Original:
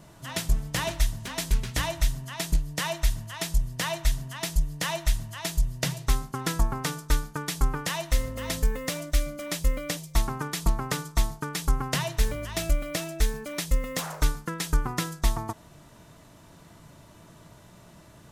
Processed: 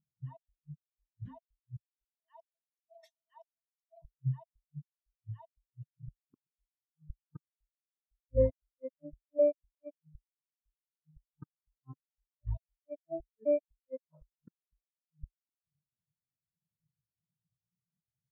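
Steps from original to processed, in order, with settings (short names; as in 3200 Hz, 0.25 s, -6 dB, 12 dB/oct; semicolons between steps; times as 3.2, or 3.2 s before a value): 2.04–4.02 Chebyshev high-pass 450 Hz, order 5; flipped gate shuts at -20 dBFS, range -34 dB; spectral expander 4:1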